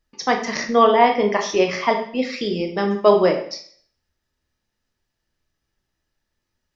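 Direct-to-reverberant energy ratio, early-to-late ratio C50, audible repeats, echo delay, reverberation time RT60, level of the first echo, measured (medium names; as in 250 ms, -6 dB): 3.0 dB, 8.0 dB, no echo, no echo, 0.55 s, no echo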